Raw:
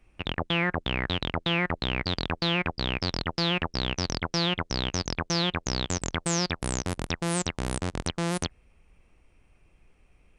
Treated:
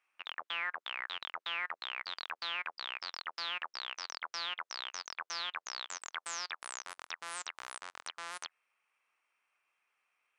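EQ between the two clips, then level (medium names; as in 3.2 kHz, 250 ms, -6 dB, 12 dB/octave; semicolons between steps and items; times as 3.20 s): band-pass filter 1.2 kHz, Q 1.7; differentiator; +9.5 dB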